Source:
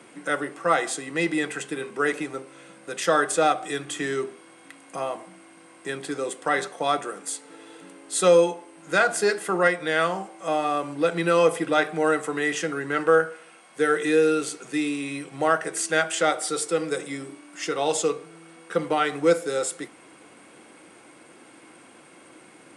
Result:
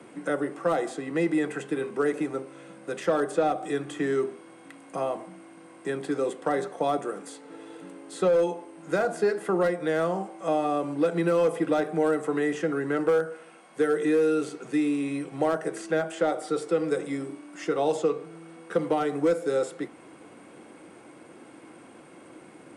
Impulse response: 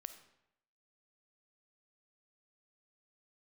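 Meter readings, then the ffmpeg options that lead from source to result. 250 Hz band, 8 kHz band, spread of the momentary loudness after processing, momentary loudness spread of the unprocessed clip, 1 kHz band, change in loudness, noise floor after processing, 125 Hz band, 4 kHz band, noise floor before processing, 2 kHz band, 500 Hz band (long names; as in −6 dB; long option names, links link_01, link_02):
+1.0 dB, −13.5 dB, 14 LU, 13 LU, −5.0 dB, −3.0 dB, −50 dBFS, 0.0 dB, −11.0 dB, −51 dBFS, −9.0 dB, −1.5 dB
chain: -filter_complex "[0:a]asoftclip=type=hard:threshold=-14dB,tiltshelf=frequency=1200:gain=5,acrossover=split=130|780|2200|5000[link_01][link_02][link_03][link_04][link_05];[link_01]acompressor=threshold=-54dB:ratio=4[link_06];[link_02]acompressor=threshold=-20dB:ratio=4[link_07];[link_03]acompressor=threshold=-34dB:ratio=4[link_08];[link_04]acompressor=threshold=-47dB:ratio=4[link_09];[link_05]acompressor=threshold=-48dB:ratio=4[link_10];[link_06][link_07][link_08][link_09][link_10]amix=inputs=5:normalize=0,volume=-1dB"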